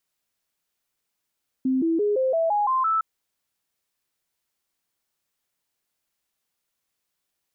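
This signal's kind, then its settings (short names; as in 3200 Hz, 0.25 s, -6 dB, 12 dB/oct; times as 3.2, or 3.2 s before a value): stepped sine 261 Hz up, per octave 3, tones 8, 0.17 s, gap 0.00 s -19 dBFS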